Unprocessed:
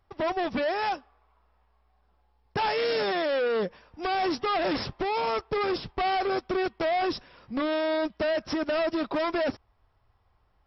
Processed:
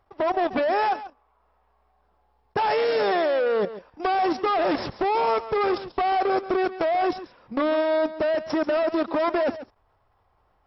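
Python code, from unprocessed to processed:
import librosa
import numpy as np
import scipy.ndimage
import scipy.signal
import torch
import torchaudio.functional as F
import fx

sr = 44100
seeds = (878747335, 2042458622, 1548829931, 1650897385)

p1 = fx.peak_eq(x, sr, hz=700.0, db=9.0, octaves=2.9)
p2 = fx.level_steps(p1, sr, step_db=11)
y = p2 + fx.echo_single(p2, sr, ms=138, db=-14.0, dry=0)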